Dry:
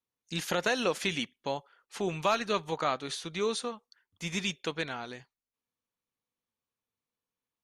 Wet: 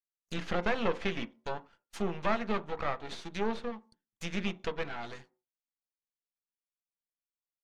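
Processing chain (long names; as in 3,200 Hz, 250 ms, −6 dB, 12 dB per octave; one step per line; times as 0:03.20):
noise gate −55 dBFS, range −22 dB
speech leveller 2 s
half-wave rectification
treble cut that deepens with the level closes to 2,500 Hz, closed at −32.5 dBFS
on a send: convolution reverb RT60 0.35 s, pre-delay 3 ms, DRR 9.5 dB
on the sum: level +1.5 dB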